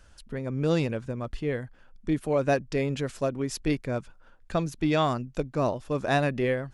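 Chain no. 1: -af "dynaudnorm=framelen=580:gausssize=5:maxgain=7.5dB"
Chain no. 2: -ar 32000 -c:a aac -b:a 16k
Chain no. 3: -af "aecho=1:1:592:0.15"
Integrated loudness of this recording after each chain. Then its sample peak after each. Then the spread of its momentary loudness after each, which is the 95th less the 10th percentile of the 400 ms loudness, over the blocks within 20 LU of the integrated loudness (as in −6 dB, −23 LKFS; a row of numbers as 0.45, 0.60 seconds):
−22.5, −28.0, −28.5 LKFS; −5.5, −11.0, −12.5 dBFS; 13, 10, 10 LU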